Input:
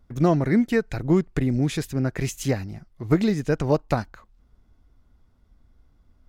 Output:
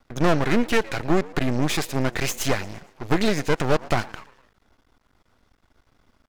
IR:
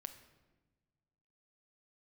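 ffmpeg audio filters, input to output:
-filter_complex "[0:a]asplit=2[link_01][link_02];[link_02]highpass=frequency=720:poles=1,volume=20dB,asoftclip=type=tanh:threshold=-6dB[link_03];[link_01][link_03]amix=inputs=2:normalize=0,lowpass=frequency=5600:poles=1,volume=-6dB,asplit=5[link_04][link_05][link_06][link_07][link_08];[link_05]adelay=115,afreqshift=95,volume=-21dB[link_09];[link_06]adelay=230,afreqshift=190,volume=-26.8dB[link_10];[link_07]adelay=345,afreqshift=285,volume=-32.7dB[link_11];[link_08]adelay=460,afreqshift=380,volume=-38.5dB[link_12];[link_04][link_09][link_10][link_11][link_12]amix=inputs=5:normalize=0,aeval=exprs='max(val(0),0)':channel_layout=same"

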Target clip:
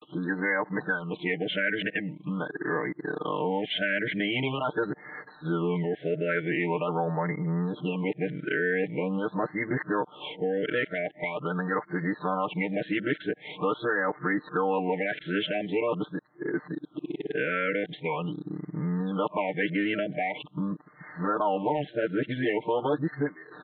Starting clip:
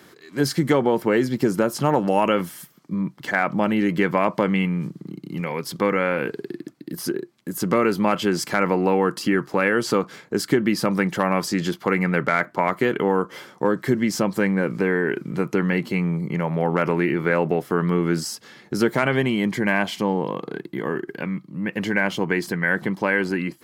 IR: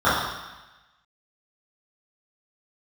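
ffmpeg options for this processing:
-filter_complex "[0:a]areverse,lowshelf=frequency=370:gain=-11.5,aecho=1:1:6.6:0.86,asplit=2[link_01][link_02];[link_02]alimiter=limit=-17dB:level=0:latency=1:release=112,volume=1dB[link_03];[link_01][link_03]amix=inputs=2:normalize=0,acompressor=threshold=-31dB:ratio=2,acrossover=split=410[link_04][link_05];[link_05]aeval=exprs='clip(val(0),-1,0.112)':channel_layout=same[link_06];[link_04][link_06]amix=inputs=2:normalize=0,aresample=8000,aresample=44100,afftfilt=real='re*(1-between(b*sr/1024,930*pow(3100/930,0.5+0.5*sin(2*PI*0.44*pts/sr))/1.41,930*pow(3100/930,0.5+0.5*sin(2*PI*0.44*pts/sr))*1.41))':imag='im*(1-between(b*sr/1024,930*pow(3100/930,0.5+0.5*sin(2*PI*0.44*pts/sr))/1.41,930*pow(3100/930,0.5+0.5*sin(2*PI*0.44*pts/sr))*1.41))':win_size=1024:overlap=0.75"

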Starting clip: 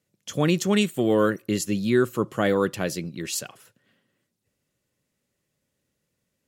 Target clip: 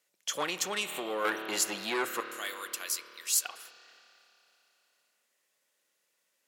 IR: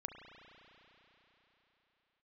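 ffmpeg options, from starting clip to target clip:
-filter_complex "[0:a]asettb=1/sr,asplit=3[link_01][link_02][link_03];[link_01]atrim=end=2.204[link_04];[link_02]atrim=start=2.2:end=3.45,asetpts=PTS-STARTPTS,afade=type=in:duration=0.004:curve=qsin,afade=type=out:start_time=1.246:duration=0.004:curve=qsin,aderivative[link_05];[link_03]atrim=start=3.446[link_06];[link_04][link_05]acrossfade=duration=0.004:curve1=hsin:curve2=qsin[link_07];[link_07][link_06]acrossfade=duration=0.004:curve1=qsin:curve2=hsin,asplit=2[link_08][link_09];[1:a]atrim=start_sample=2205,asetrate=52920,aresample=44100[link_10];[link_09][link_10]afir=irnorm=-1:irlink=0,volume=1dB[link_11];[link_08][link_11]amix=inputs=2:normalize=0,asettb=1/sr,asplit=3[link_12][link_13][link_14];[link_12]atrim=end=0.424[link_15];[link_13]atrim=start=0.42:end=1.25,asetpts=PTS-STARTPTS,afade=type=in:duration=0.004:curve=qsin,afade=type=out:start_time=0.826:duration=0.004:curve=qsin,acompressor=threshold=-20dB:ratio=4[link_16];[link_14]atrim=start=1.246[link_17];[link_15][link_16]acrossfade=duration=0.004:curve1=hsin:curve2=qsin[link_18];[link_18][link_17]acrossfade=duration=0.004:curve1=qsin:curve2=hsin,asoftclip=type=tanh:threshold=-16.5dB,highpass=760"

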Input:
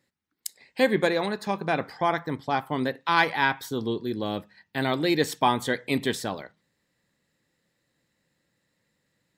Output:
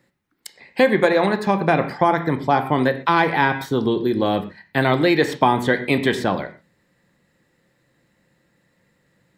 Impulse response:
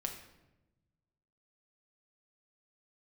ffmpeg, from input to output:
-filter_complex "[0:a]asplit=2[link_01][link_02];[1:a]atrim=start_sample=2205,atrim=end_sample=6174,lowpass=2800[link_03];[link_02][link_03]afir=irnorm=-1:irlink=0,volume=1dB[link_04];[link_01][link_04]amix=inputs=2:normalize=0,acrossover=split=560|5000[link_05][link_06][link_07];[link_05]acompressor=threshold=-23dB:ratio=4[link_08];[link_06]acompressor=threshold=-22dB:ratio=4[link_09];[link_07]acompressor=threshold=-49dB:ratio=4[link_10];[link_08][link_09][link_10]amix=inputs=3:normalize=0,volume=5.5dB"

